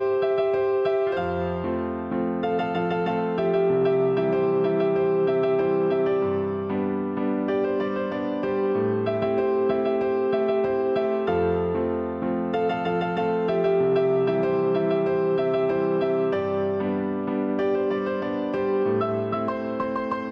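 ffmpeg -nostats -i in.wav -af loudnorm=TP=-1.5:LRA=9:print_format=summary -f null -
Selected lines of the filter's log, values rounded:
Input Integrated:    -24.2 LUFS
Input True Peak:     -12.7 dBTP
Input LRA:             2.7 LU
Input Threshold:     -34.2 LUFS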